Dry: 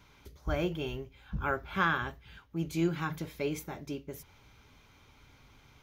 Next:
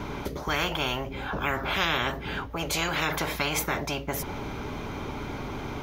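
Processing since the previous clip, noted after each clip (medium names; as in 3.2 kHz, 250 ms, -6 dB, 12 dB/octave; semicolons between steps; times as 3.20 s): tilt shelf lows +9.5 dB, about 1.2 kHz; band-stop 500 Hz, Q 12; spectrum-flattening compressor 10:1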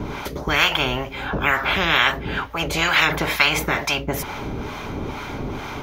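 dynamic bell 2.2 kHz, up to +6 dB, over -40 dBFS, Q 0.75; harmonic tremolo 2.2 Hz, depth 70%, crossover 680 Hz; trim +8.5 dB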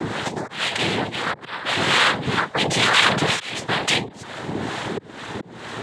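slow attack 519 ms; in parallel at -1 dB: peak limiter -15.5 dBFS, peak gain reduction 11.5 dB; on the sum: noise-vocoded speech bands 6; trim -1 dB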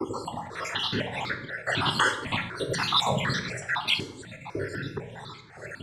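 random holes in the spectrogram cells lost 65%; on a send at -5 dB: reverberation RT60 1.0 s, pre-delay 7 ms; on the sum: stepped phaser 4 Hz 670–2800 Hz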